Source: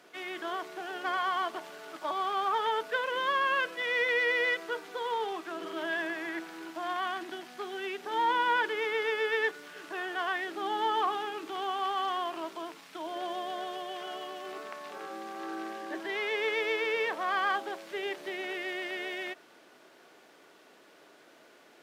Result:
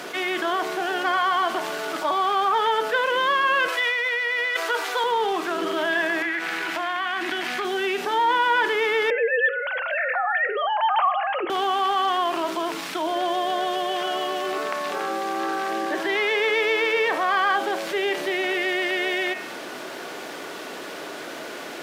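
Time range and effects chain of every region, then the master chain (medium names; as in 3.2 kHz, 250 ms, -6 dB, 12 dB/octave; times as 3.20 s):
3.68–5.04 s: high-pass 670 Hz + compressor with a negative ratio -35 dBFS
6.22–7.65 s: peaking EQ 2.1 kHz +11 dB 1.5 oct + compression 4:1, threshold -38 dBFS
9.10–11.50 s: formants replaced by sine waves + upward compressor, threshold -31 dBFS
whole clip: de-hum 108.6 Hz, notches 29; level flattener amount 50%; trim +5 dB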